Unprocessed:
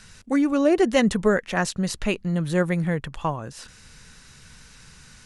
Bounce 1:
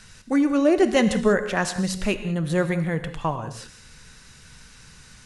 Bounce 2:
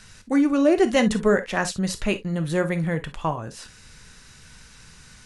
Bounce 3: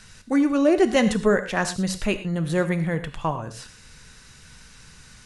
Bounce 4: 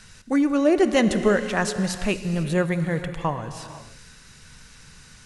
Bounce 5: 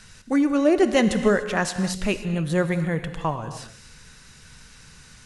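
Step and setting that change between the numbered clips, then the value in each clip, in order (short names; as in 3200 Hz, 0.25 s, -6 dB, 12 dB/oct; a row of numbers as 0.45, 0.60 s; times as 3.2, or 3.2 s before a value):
non-linear reverb, gate: 220, 80, 140, 530, 320 ms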